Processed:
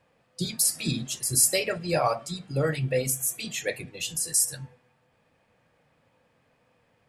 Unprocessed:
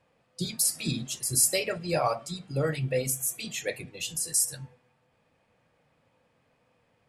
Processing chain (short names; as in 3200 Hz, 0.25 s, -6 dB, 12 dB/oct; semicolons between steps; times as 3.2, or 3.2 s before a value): bell 1700 Hz +2.5 dB 0.27 oct; gain +2 dB